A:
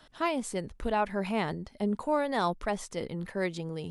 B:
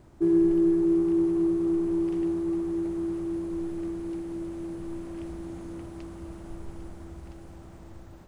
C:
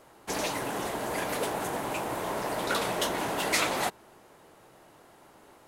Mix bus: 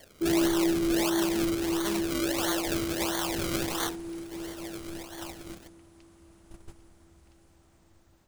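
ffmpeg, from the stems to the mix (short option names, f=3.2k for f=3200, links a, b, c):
-filter_complex "[0:a]asoftclip=type=hard:threshold=-27dB,equalizer=f=120:w=1.1:g=-14,adelay=50,volume=1dB[a];[1:a]volume=-4.5dB[b];[2:a]highpass=f=430:w=0.5412,highpass=f=430:w=1.3066,acompressor=mode=upward:threshold=-33dB:ratio=2.5,asplit=2[c][d];[d]afreqshift=0.44[e];[c][e]amix=inputs=2:normalize=1,volume=1.5dB[f];[a][f]amix=inputs=2:normalize=0,acrusher=samples=34:mix=1:aa=0.000001:lfo=1:lforange=34:lforate=1.5,acompressor=threshold=-35dB:ratio=2,volume=0dB[g];[b][g]amix=inputs=2:normalize=0,bandreject=f=59.82:t=h:w=4,bandreject=f=119.64:t=h:w=4,bandreject=f=179.46:t=h:w=4,bandreject=f=239.28:t=h:w=4,bandreject=f=299.1:t=h:w=4,bandreject=f=358.92:t=h:w=4,bandreject=f=418.74:t=h:w=4,bandreject=f=478.56:t=h:w=4,bandreject=f=538.38:t=h:w=4,bandreject=f=598.2:t=h:w=4,bandreject=f=658.02:t=h:w=4,bandreject=f=717.84:t=h:w=4,bandreject=f=777.66:t=h:w=4,bandreject=f=837.48:t=h:w=4,bandreject=f=897.3:t=h:w=4,bandreject=f=957.12:t=h:w=4,agate=range=-11dB:threshold=-40dB:ratio=16:detection=peak,highshelf=f=2k:g=11.5"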